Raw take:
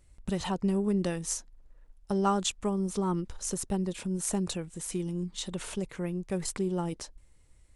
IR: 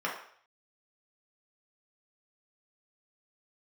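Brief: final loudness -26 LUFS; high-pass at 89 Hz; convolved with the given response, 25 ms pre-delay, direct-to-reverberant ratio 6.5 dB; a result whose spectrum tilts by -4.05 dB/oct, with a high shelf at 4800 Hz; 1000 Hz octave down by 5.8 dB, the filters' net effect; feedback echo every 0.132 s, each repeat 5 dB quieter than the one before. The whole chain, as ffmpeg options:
-filter_complex "[0:a]highpass=89,equalizer=f=1k:t=o:g=-8,highshelf=f=4.8k:g=7.5,aecho=1:1:132|264|396|528|660|792|924:0.562|0.315|0.176|0.0988|0.0553|0.031|0.0173,asplit=2[a][b];[1:a]atrim=start_sample=2205,adelay=25[c];[b][c]afir=irnorm=-1:irlink=0,volume=-15dB[d];[a][d]amix=inputs=2:normalize=0,volume=3.5dB"

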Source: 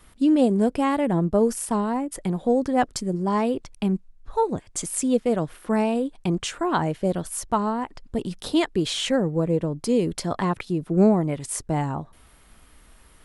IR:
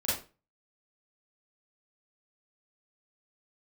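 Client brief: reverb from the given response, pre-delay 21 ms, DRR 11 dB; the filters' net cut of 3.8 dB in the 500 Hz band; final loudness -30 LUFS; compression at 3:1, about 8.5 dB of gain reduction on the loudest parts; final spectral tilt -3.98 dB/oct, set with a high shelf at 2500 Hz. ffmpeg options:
-filter_complex "[0:a]equalizer=f=500:t=o:g=-5,highshelf=f=2.5k:g=8.5,acompressor=threshold=-28dB:ratio=3,asplit=2[a][b];[1:a]atrim=start_sample=2205,adelay=21[c];[b][c]afir=irnorm=-1:irlink=0,volume=-18dB[d];[a][d]amix=inputs=2:normalize=0"

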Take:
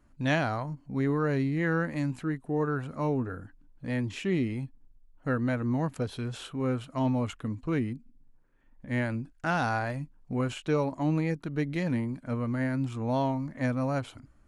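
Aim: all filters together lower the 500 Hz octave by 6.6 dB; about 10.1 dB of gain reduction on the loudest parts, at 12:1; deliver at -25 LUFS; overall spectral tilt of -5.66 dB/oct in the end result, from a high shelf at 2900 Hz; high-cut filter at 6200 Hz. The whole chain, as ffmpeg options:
-af "lowpass=6.2k,equalizer=f=500:t=o:g=-8.5,highshelf=f=2.9k:g=3.5,acompressor=threshold=-35dB:ratio=12,volume=15.5dB"

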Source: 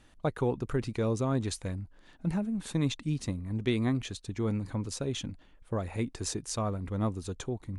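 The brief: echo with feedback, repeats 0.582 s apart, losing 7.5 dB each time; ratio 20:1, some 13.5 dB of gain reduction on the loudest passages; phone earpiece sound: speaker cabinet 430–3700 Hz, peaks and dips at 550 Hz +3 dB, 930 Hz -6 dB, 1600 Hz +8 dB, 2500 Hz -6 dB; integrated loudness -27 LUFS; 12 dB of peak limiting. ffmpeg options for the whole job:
-af "acompressor=threshold=-37dB:ratio=20,alimiter=level_in=10dB:limit=-24dB:level=0:latency=1,volume=-10dB,highpass=430,equalizer=f=550:t=q:w=4:g=3,equalizer=f=930:t=q:w=4:g=-6,equalizer=f=1.6k:t=q:w=4:g=8,equalizer=f=2.5k:t=q:w=4:g=-6,lowpass=f=3.7k:w=0.5412,lowpass=f=3.7k:w=1.3066,aecho=1:1:582|1164|1746|2328|2910:0.422|0.177|0.0744|0.0312|0.0131,volume=23.5dB"

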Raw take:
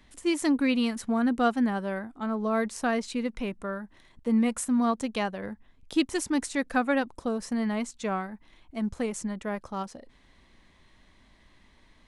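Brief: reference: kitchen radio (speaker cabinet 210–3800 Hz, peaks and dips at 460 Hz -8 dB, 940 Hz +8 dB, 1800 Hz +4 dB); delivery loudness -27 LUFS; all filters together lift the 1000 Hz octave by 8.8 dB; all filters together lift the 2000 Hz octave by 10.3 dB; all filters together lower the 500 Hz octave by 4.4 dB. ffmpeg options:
-af "highpass=210,equalizer=f=460:t=q:w=4:g=-8,equalizer=f=940:t=q:w=4:g=8,equalizer=f=1.8k:t=q:w=4:g=4,lowpass=f=3.8k:w=0.5412,lowpass=f=3.8k:w=1.3066,equalizer=f=500:t=o:g=-7.5,equalizer=f=1k:t=o:g=8,equalizer=f=2k:t=o:g=7.5,volume=-1dB"

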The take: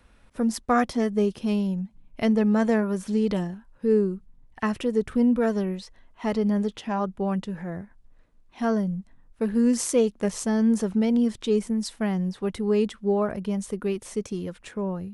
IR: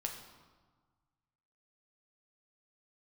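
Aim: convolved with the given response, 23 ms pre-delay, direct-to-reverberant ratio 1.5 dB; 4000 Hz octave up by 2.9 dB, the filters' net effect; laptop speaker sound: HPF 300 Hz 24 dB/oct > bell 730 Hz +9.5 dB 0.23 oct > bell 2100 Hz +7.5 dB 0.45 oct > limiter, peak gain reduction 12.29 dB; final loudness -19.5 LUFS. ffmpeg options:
-filter_complex "[0:a]equalizer=f=4k:t=o:g=3,asplit=2[a][b];[1:a]atrim=start_sample=2205,adelay=23[c];[b][c]afir=irnorm=-1:irlink=0,volume=-1.5dB[d];[a][d]amix=inputs=2:normalize=0,highpass=f=300:w=0.5412,highpass=f=300:w=1.3066,equalizer=f=730:t=o:w=0.23:g=9.5,equalizer=f=2.1k:t=o:w=0.45:g=7.5,volume=8.5dB,alimiter=limit=-8dB:level=0:latency=1"

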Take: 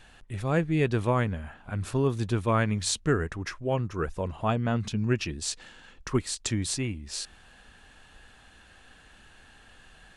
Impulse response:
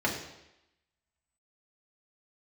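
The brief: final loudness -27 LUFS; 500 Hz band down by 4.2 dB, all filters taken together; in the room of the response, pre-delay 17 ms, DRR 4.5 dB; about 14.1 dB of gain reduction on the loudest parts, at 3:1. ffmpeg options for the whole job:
-filter_complex "[0:a]equalizer=f=500:t=o:g=-5.5,acompressor=threshold=-41dB:ratio=3,asplit=2[a][b];[1:a]atrim=start_sample=2205,adelay=17[c];[b][c]afir=irnorm=-1:irlink=0,volume=-15dB[d];[a][d]amix=inputs=2:normalize=0,volume=13dB"

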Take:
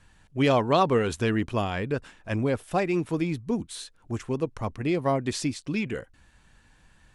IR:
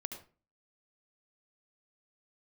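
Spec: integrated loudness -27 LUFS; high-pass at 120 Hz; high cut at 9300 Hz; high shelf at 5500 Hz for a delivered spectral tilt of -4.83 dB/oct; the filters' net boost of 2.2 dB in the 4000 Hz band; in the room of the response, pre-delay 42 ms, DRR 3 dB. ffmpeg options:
-filter_complex "[0:a]highpass=120,lowpass=9.3k,equalizer=f=4k:t=o:g=5.5,highshelf=f=5.5k:g=-7,asplit=2[a][b];[1:a]atrim=start_sample=2205,adelay=42[c];[b][c]afir=irnorm=-1:irlink=0,volume=-2dB[d];[a][d]amix=inputs=2:normalize=0,volume=-1.5dB"

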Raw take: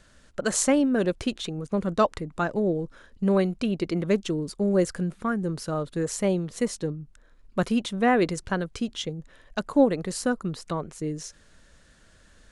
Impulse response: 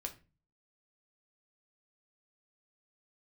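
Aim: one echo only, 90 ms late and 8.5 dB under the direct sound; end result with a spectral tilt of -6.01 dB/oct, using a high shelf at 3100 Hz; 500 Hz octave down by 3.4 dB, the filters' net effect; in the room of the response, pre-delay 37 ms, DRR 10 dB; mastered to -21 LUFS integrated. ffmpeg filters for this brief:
-filter_complex "[0:a]equalizer=f=500:t=o:g=-4,highshelf=f=3.1k:g=-7,aecho=1:1:90:0.376,asplit=2[a][b];[1:a]atrim=start_sample=2205,adelay=37[c];[b][c]afir=irnorm=-1:irlink=0,volume=-8dB[d];[a][d]amix=inputs=2:normalize=0,volume=6.5dB"

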